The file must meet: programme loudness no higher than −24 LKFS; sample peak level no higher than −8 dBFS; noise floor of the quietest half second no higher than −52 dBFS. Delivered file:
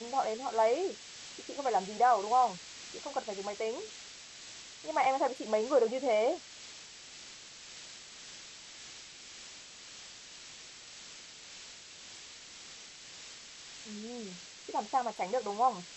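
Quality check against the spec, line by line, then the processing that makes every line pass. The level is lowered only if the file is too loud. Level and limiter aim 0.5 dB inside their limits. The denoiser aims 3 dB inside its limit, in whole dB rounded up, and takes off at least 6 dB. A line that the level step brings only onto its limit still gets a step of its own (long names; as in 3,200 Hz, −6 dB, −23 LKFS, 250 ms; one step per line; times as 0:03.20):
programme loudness −32.5 LKFS: in spec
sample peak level −16.0 dBFS: in spec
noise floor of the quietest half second −50 dBFS: out of spec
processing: broadband denoise 6 dB, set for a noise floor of −50 dBFS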